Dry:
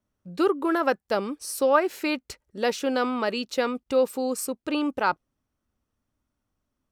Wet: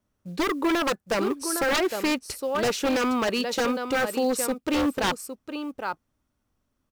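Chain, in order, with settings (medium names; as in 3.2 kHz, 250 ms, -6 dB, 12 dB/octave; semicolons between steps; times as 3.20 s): short-mantissa float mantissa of 4-bit; delay 810 ms -10.5 dB; wavefolder -21.5 dBFS; trim +3.5 dB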